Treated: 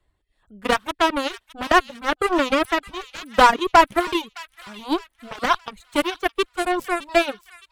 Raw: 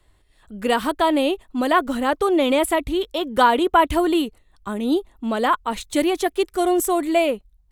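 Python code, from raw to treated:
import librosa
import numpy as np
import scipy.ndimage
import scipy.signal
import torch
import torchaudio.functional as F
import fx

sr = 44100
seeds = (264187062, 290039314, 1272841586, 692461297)

p1 = fx.cheby_harmonics(x, sr, harmonics=(2, 7), levels_db=(-11, -15), full_scale_db=-4.0)
p2 = fx.high_shelf(p1, sr, hz=4500.0, db=-7.5)
p3 = 10.0 ** (-11.0 / 20.0) * (np.abs((p2 / 10.0 ** (-11.0 / 20.0) + 3.0) % 4.0 - 2.0) - 1.0)
p4 = p2 + (p3 * librosa.db_to_amplitude(-10.0))
p5 = fx.dereverb_blind(p4, sr, rt60_s=0.75)
p6 = fx.echo_wet_highpass(p5, sr, ms=614, feedback_pct=40, hz=2100.0, wet_db=-13.5)
y = p6 * librosa.db_to_amplitude(1.5)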